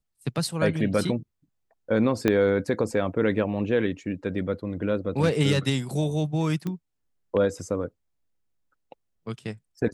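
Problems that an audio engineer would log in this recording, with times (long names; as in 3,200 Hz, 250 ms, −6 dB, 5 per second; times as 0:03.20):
0:02.28: click −9 dBFS
0:06.67: click −19 dBFS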